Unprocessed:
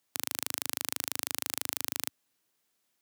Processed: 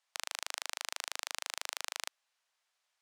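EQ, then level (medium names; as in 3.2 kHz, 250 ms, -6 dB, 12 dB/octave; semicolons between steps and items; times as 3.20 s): high-pass 650 Hz 24 dB/octave; distance through air 67 m; +1.0 dB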